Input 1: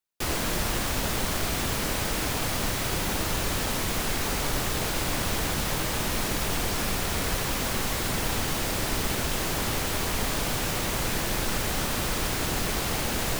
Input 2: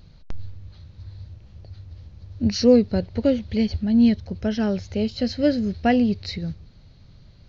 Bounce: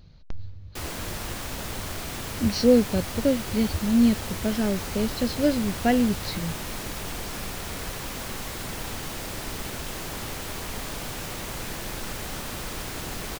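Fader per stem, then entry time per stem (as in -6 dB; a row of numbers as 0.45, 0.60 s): -6.0, -2.5 dB; 0.55, 0.00 s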